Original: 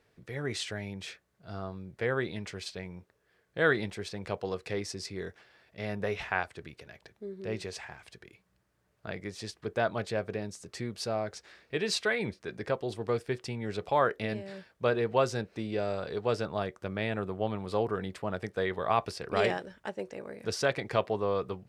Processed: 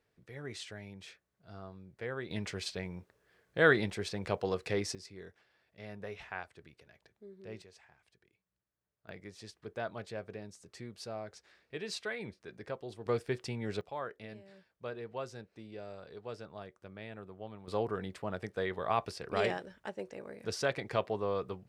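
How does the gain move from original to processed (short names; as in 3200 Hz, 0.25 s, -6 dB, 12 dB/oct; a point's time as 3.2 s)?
-9 dB
from 2.31 s +1 dB
from 4.95 s -11 dB
from 7.62 s -18.5 dB
from 9.09 s -9.5 dB
from 13.06 s -2 dB
from 13.81 s -14 dB
from 17.68 s -4 dB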